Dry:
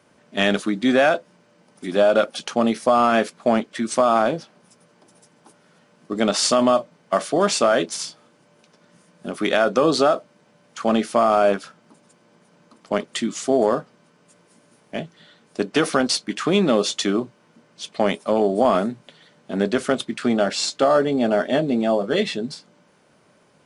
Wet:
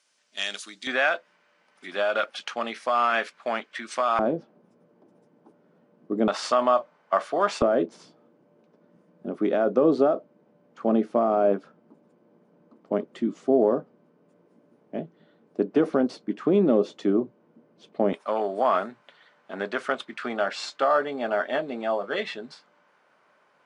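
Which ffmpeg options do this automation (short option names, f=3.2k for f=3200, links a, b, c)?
-af "asetnsamples=n=441:p=0,asendcmd='0.87 bandpass f 1900;4.19 bandpass f 330;6.28 bandpass f 1100;7.62 bandpass f 340;18.13 bandpass f 1300',bandpass=f=5.9k:t=q:w=1:csg=0"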